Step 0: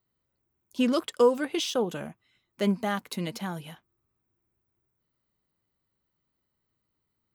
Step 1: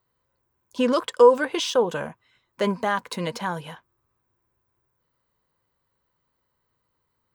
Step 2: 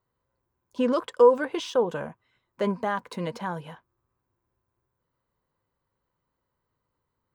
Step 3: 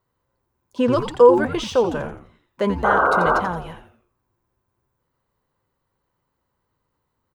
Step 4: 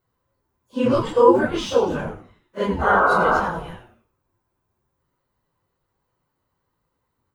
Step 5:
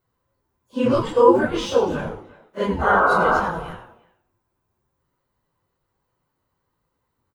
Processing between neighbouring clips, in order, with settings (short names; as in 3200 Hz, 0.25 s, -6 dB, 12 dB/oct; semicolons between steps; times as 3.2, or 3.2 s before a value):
thirty-one-band EQ 200 Hz -5 dB, 315 Hz -4 dB, 500 Hz +8 dB, 1000 Hz +11 dB, 1600 Hz +6 dB, 12500 Hz -12 dB; in parallel at 0 dB: limiter -19.5 dBFS, peak gain reduction 16 dB; on the sum: gain -2 dB
high shelf 2000 Hz -9 dB; gain -2 dB
painted sound noise, 2.84–3.4, 380–1600 Hz -23 dBFS; frequency-shifting echo 86 ms, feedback 38%, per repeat -130 Hz, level -9 dB; gain +5 dB
phase scrambler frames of 0.1 s
speakerphone echo 0.35 s, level -20 dB